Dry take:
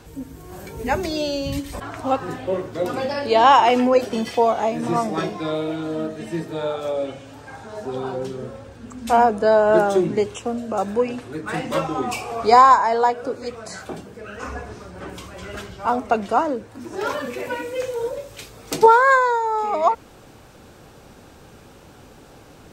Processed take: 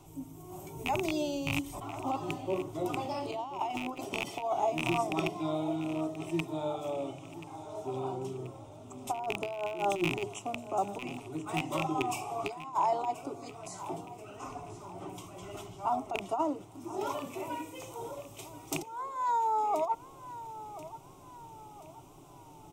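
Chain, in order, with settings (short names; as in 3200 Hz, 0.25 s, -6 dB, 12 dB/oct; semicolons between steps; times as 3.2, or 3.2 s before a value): rattling part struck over -26 dBFS, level -6 dBFS; bell 4400 Hz -11.5 dB 0.42 oct; negative-ratio compressor -19 dBFS, ratio -0.5; fixed phaser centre 330 Hz, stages 8; feedback echo 1.032 s, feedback 45%, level -15 dB; gain -8 dB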